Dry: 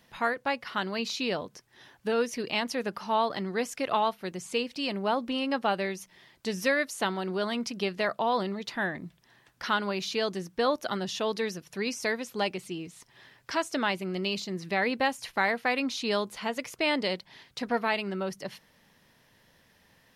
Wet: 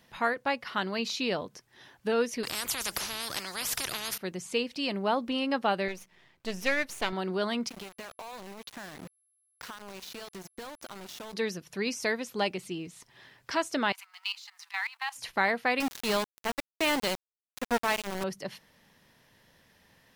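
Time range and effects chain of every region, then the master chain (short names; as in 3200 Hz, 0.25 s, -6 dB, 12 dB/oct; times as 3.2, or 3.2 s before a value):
2.43–4.18 resonant high shelf 4300 Hz +7.5 dB, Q 1.5 + spectral compressor 10:1
5.88–7.13 half-wave gain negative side -12 dB + bell 2500 Hz +4.5 dB 0.73 oct + mismatched tape noise reduction decoder only
7.68–11.32 compressor 10:1, threshold -38 dBFS + sample gate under -40.5 dBFS + whine 11000 Hz -70 dBFS
13.92–15.16 G.711 law mismatch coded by mu + steep high-pass 840 Hz 72 dB/oct + level quantiser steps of 16 dB
15.8–18.24 low shelf 79 Hz +10.5 dB + sample gate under -27.5 dBFS
whole clip: dry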